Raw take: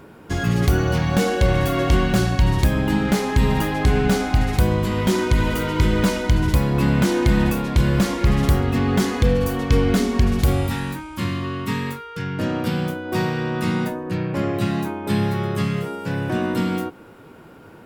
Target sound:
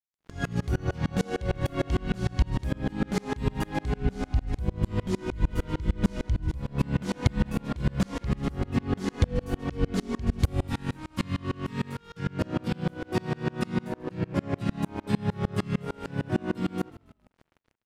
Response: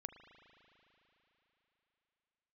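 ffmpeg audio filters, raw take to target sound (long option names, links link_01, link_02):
-filter_complex "[0:a]asettb=1/sr,asplit=3[link_01][link_02][link_03];[link_01]atrim=end=4.014[link_04];[link_02]atrim=start=4.01:end=6.58,asetpts=PTS-STARTPTS,afade=type=in:duration=0.004:curve=qsin,afade=type=out:start_time=2.566:duration=0.004:curve=qsin,lowshelf=frequency=130:gain=10.5[link_05];[link_03]atrim=start=6.576[link_06];[link_04][link_05]acrossfade=duration=0.004:curve1=hsin:curve2=qsin[link_07];[link_07][link_06]acrossfade=duration=0.004:curve1=qsin:curve2=hsin,dynaudnorm=framelen=120:gausssize=3:maxgain=3.5dB,bandreject=frequency=50:width_type=h:width=6,bandreject=frequency=100:width_type=h:width=6,bandreject=frequency=150:width_type=h:width=6,bandreject=frequency=200:width_type=h:width=6,bandreject=frequency=250:width_type=h:width=6,bandreject=frequency=300:width_type=h:width=6,bandreject=frequency=350:width_type=h:width=6,aeval=exprs='sgn(val(0))*max(abs(val(0))-0.0168,0)':channel_layout=same,asplit=4[link_08][link_09][link_10][link_11];[link_09]adelay=139,afreqshift=-43,volume=-21.5dB[link_12];[link_10]adelay=278,afreqshift=-86,volume=-29.2dB[link_13];[link_11]adelay=417,afreqshift=-129,volume=-37dB[link_14];[link_08][link_12][link_13][link_14]amix=inputs=4:normalize=0,acompressor=threshold=-23dB:ratio=2.5,lowpass=9900,lowshelf=frequency=400:gain=5.5,aeval=exprs='val(0)*pow(10,-31*if(lt(mod(-6.6*n/s,1),2*abs(-6.6)/1000),1-mod(-6.6*n/s,1)/(2*abs(-6.6)/1000),(mod(-6.6*n/s,1)-2*abs(-6.6)/1000)/(1-2*abs(-6.6)/1000))/20)':channel_layout=same"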